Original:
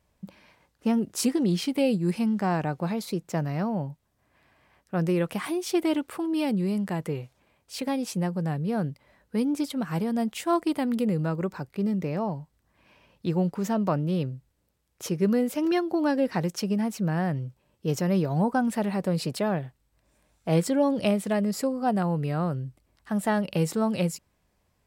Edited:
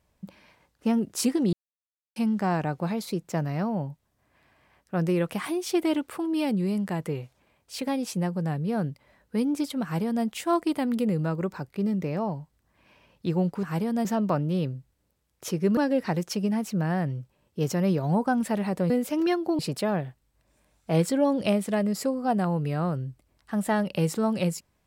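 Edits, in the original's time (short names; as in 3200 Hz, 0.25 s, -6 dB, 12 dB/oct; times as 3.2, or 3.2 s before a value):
1.53–2.16 mute
9.83–10.25 copy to 13.63
15.35–16.04 move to 19.17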